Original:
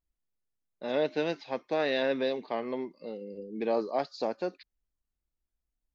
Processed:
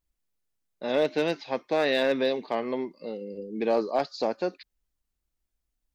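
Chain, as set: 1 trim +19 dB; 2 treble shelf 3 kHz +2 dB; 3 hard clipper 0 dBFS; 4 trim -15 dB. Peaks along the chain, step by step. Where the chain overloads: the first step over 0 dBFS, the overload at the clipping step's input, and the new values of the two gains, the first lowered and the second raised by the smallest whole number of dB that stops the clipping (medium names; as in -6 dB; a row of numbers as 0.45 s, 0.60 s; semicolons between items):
+3.0 dBFS, +3.5 dBFS, 0.0 dBFS, -15.0 dBFS; step 1, 3.5 dB; step 1 +15 dB, step 4 -11 dB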